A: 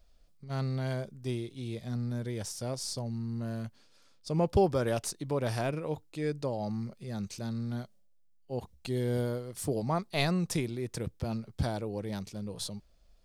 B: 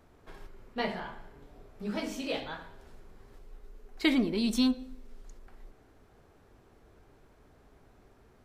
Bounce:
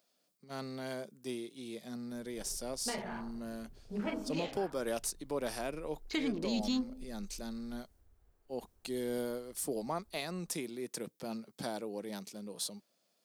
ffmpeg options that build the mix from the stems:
-filter_complex "[0:a]highpass=f=200:w=0.5412,highpass=f=200:w=1.3066,volume=-3.5dB[a];[1:a]afwtdn=0.00562,adelay=2100,volume=-2dB[b];[a][b]amix=inputs=2:normalize=0,highshelf=f=7.5k:g=10,alimiter=level_in=0.5dB:limit=-24dB:level=0:latency=1:release=320,volume=-0.5dB"

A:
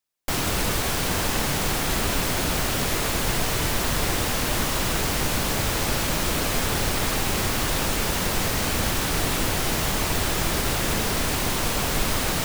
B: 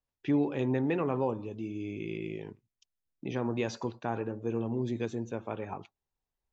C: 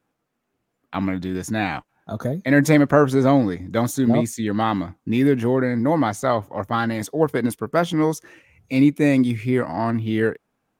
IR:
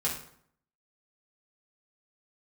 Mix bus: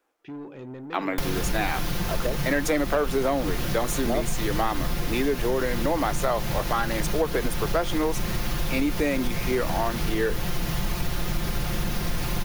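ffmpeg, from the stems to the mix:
-filter_complex "[0:a]equalizer=f=8k:t=o:w=0.36:g=-9,aecho=1:1:5.7:0.67,acrossover=split=180[a][b];[b]acompressor=threshold=-32dB:ratio=6[c];[a][c]amix=inputs=2:normalize=0,adelay=900,volume=2dB[d];[1:a]asoftclip=type=tanh:threshold=-27.5dB,volume=-6dB[e];[2:a]highpass=f=330:w=0.5412,highpass=f=330:w=1.3066,volume=2dB[f];[d][e][f]amix=inputs=3:normalize=0,asoftclip=type=tanh:threshold=-6.5dB,acompressor=threshold=-20dB:ratio=6"

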